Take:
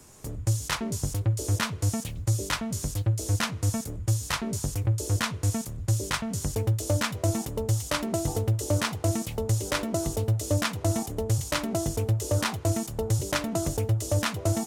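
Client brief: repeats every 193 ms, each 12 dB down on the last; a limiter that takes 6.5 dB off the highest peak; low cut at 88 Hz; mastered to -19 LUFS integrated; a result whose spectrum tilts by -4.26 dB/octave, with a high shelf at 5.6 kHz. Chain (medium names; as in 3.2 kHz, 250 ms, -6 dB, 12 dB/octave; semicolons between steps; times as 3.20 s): high-pass 88 Hz; treble shelf 5.6 kHz +6 dB; peak limiter -17.5 dBFS; feedback delay 193 ms, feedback 25%, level -12 dB; trim +10 dB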